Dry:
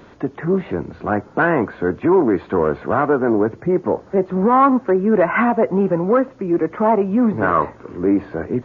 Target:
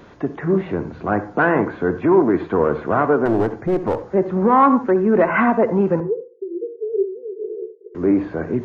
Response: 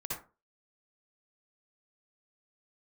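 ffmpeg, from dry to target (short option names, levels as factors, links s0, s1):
-filter_complex "[0:a]asettb=1/sr,asplit=3[s0][s1][s2];[s0]atrim=end=3.254[s3];[s1]atrim=start=3.25:end=4.03,asetpts=PTS-STARTPTS,afade=t=in:d=0.004:c=qsin,afade=t=out:st=0.776:d=0.004:c=qsin,aeval=exprs='clip(val(0),-1,0.133)':c=same[s4];[s2]atrim=start=4.026[s5];[s3][s4]acrossfade=d=0.004:c1=hsin:c2=qsin[s6];[s6][s5]acrossfade=d=0.004:c1=qsin:c2=hsin,asettb=1/sr,asplit=3[s7][s8][s9];[s7]atrim=end=6.004[s10];[s8]atrim=start=6:end=7.95,asetpts=PTS-STARTPTS,afade=t=in:d=0.004:c=qsin,afade=t=out:st=1.946:d=0.004:c=qsin,asuperpass=centerf=410:order=8:qfactor=3.8[s11];[s9]atrim=start=7.946[s12];[s10][s11]acrossfade=d=0.004:c1=hsin:c2=qsin[s13];[s13][s12]acrossfade=d=0.004:c1=qsin:c2=hsin,asplit=2[s14][s15];[1:a]atrim=start_sample=2205[s16];[s15][s16]afir=irnorm=-1:irlink=0,volume=0.251[s17];[s14][s17]amix=inputs=2:normalize=0,volume=0.841"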